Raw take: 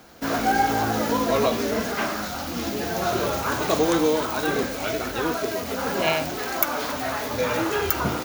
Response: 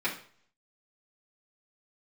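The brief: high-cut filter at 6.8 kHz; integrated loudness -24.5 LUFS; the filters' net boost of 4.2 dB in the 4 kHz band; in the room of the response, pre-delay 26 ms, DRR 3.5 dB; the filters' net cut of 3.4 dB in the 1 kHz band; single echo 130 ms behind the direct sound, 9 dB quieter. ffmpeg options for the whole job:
-filter_complex "[0:a]lowpass=6800,equalizer=f=1000:t=o:g=-5,equalizer=f=4000:t=o:g=6,aecho=1:1:130:0.355,asplit=2[s0][s1];[1:a]atrim=start_sample=2205,adelay=26[s2];[s1][s2]afir=irnorm=-1:irlink=0,volume=0.237[s3];[s0][s3]amix=inputs=2:normalize=0,volume=0.891"

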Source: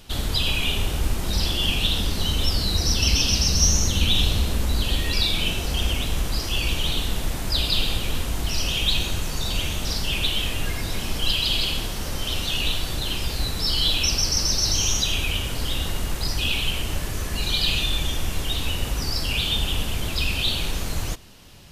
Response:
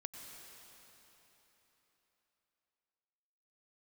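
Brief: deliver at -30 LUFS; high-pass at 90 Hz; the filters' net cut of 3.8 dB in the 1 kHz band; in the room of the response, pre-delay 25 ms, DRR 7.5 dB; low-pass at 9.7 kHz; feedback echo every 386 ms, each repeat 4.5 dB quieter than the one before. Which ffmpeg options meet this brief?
-filter_complex "[0:a]highpass=90,lowpass=9700,equalizer=f=1000:t=o:g=-5,aecho=1:1:386|772|1158|1544|1930|2316|2702|3088|3474:0.596|0.357|0.214|0.129|0.0772|0.0463|0.0278|0.0167|0.01,asplit=2[s0][s1];[1:a]atrim=start_sample=2205,adelay=25[s2];[s1][s2]afir=irnorm=-1:irlink=0,volume=0.596[s3];[s0][s3]amix=inputs=2:normalize=0,volume=0.398"

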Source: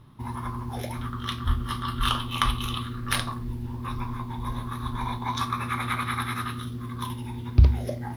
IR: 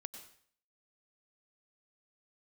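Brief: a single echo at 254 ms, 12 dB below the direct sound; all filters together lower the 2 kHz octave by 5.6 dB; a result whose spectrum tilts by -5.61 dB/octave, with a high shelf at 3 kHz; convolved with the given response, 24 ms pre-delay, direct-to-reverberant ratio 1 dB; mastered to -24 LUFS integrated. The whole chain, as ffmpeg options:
-filter_complex "[0:a]equalizer=f=2000:t=o:g=-4,highshelf=f=3000:g=-9,aecho=1:1:254:0.251,asplit=2[s0][s1];[1:a]atrim=start_sample=2205,adelay=24[s2];[s1][s2]afir=irnorm=-1:irlink=0,volume=1.41[s3];[s0][s3]amix=inputs=2:normalize=0,volume=1.5"

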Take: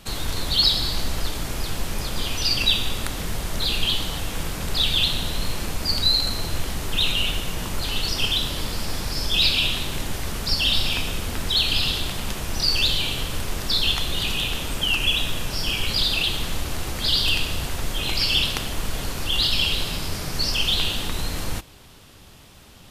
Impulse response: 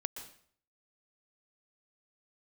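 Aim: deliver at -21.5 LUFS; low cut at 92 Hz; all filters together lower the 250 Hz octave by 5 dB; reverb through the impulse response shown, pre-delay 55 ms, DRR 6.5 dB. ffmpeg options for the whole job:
-filter_complex "[0:a]highpass=92,equalizer=f=250:t=o:g=-7,asplit=2[s0][s1];[1:a]atrim=start_sample=2205,adelay=55[s2];[s1][s2]afir=irnorm=-1:irlink=0,volume=0.473[s3];[s0][s3]amix=inputs=2:normalize=0,volume=1.12"

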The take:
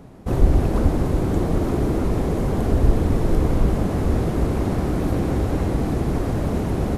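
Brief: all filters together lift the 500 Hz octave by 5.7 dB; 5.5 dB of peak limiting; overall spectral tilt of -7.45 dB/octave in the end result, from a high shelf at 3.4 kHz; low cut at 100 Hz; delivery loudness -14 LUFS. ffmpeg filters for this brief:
-af "highpass=100,equalizer=f=500:t=o:g=7.5,highshelf=f=3400:g=-5.5,volume=2.66,alimiter=limit=0.596:level=0:latency=1"

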